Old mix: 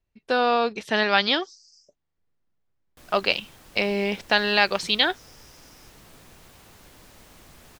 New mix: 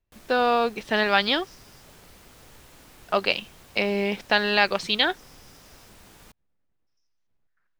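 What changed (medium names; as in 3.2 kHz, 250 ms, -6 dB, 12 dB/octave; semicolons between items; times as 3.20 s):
speech: add treble shelf 7.3 kHz -9.5 dB; background: entry -2.85 s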